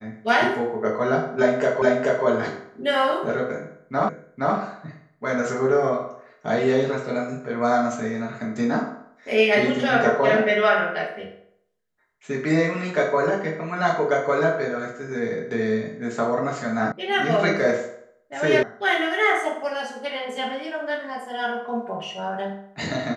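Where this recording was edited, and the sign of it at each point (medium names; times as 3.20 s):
1.82 s: repeat of the last 0.43 s
4.09 s: repeat of the last 0.47 s
16.92 s: sound stops dead
18.63 s: sound stops dead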